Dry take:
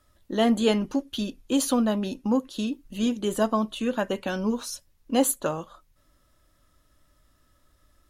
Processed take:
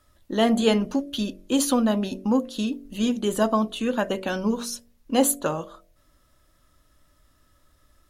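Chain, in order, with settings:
hum removal 47.32 Hz, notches 15
level +2.5 dB

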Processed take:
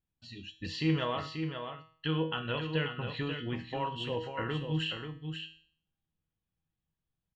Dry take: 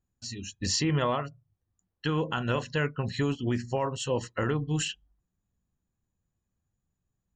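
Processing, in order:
high shelf with overshoot 4,600 Hz −12 dB, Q 3
tuned comb filter 160 Hz, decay 0.5 s, harmonics all, mix 80%
single-tap delay 536 ms −7 dB
level +4 dB

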